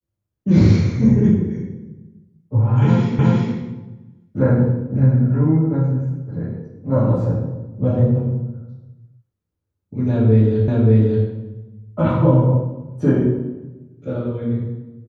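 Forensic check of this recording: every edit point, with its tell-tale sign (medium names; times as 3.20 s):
3.19 s: repeat of the last 0.36 s
10.68 s: repeat of the last 0.58 s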